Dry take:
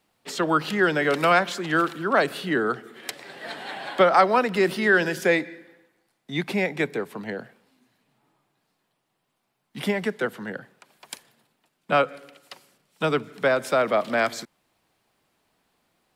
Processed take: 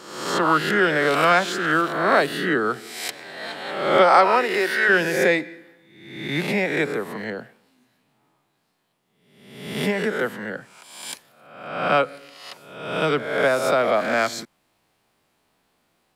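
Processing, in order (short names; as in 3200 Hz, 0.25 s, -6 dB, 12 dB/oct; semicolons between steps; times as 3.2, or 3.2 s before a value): spectral swells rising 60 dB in 0.90 s; 3.97–4.88 HPF 170 Hz -> 580 Hz 12 dB/oct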